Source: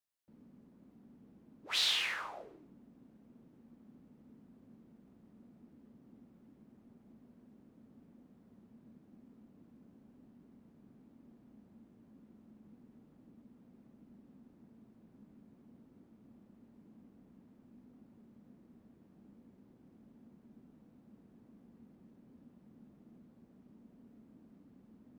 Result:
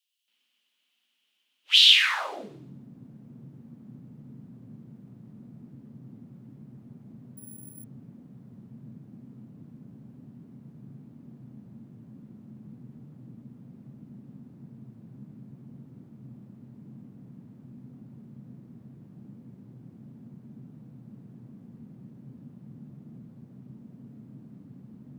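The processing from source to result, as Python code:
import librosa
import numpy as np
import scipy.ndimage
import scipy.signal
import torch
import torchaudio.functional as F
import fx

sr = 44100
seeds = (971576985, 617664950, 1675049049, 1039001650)

y = fx.low_shelf(x, sr, hz=110.0, db=11.0)
y = fx.echo_wet_highpass(y, sr, ms=121, feedback_pct=37, hz=4300.0, wet_db=-8.5)
y = fx.resample_bad(y, sr, factor=4, down='none', up='zero_stuff', at=(7.37, 7.84))
y = fx.filter_sweep_highpass(y, sr, from_hz=3000.0, to_hz=130.0, start_s=1.91, end_s=2.55, q=6.1)
y = y * librosa.db_to_amplitude(5.5)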